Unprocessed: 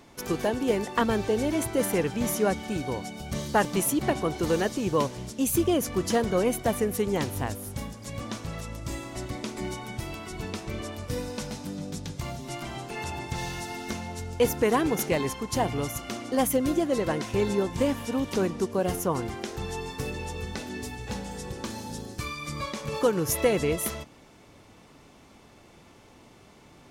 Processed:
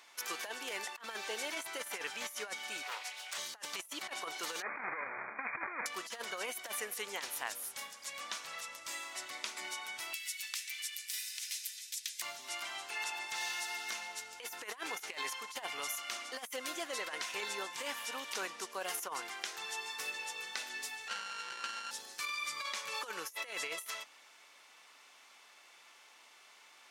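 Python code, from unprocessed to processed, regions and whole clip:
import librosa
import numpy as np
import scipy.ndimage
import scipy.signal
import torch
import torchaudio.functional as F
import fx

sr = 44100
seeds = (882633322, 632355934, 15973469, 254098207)

y = fx.chain(x, sr, fx.highpass(hz=650.0, slope=12),
    fx.doubler(ms=27.0, db=-11.0),
    fx.doppler_dist(depth_ms=0.35), at=(2.83, 3.38))
y = fx.chain(y, sr, fx.halfwave_hold(),
    fx.brickwall_lowpass(high_hz=2500.0),
    fx.over_compress(threshold_db=-24.0, ratio=-0.5), at=(4.62, 5.86))
y = fx.chain(y, sr, fx.steep_highpass(hz=1800.0, slope=48),
    fx.peak_eq(hz=14000.0, db=14.5, octaves=1.2),
    fx.doppler_dist(depth_ms=0.94), at=(10.13, 12.22))
y = fx.chain(y, sr, fx.sample_sort(block=32),
    fx.bessel_lowpass(hz=6000.0, order=4),
    fx.doppler_dist(depth_ms=0.16), at=(21.08, 21.91))
y = scipy.signal.sosfilt(scipy.signal.butter(2, 1400.0, 'highpass', fs=sr, output='sos'), y)
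y = fx.high_shelf(y, sr, hz=4700.0, db=-3.0)
y = fx.over_compress(y, sr, threshold_db=-39.0, ratio=-0.5)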